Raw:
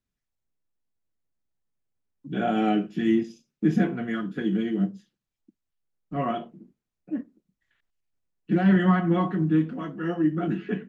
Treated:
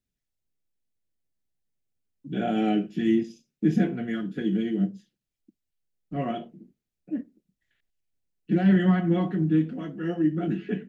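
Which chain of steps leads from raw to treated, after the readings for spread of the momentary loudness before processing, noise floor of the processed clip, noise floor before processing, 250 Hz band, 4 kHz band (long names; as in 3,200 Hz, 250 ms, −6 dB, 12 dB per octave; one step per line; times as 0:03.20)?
13 LU, −85 dBFS, −85 dBFS, −0.5 dB, can't be measured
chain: parametric band 1,100 Hz −10.5 dB 0.83 octaves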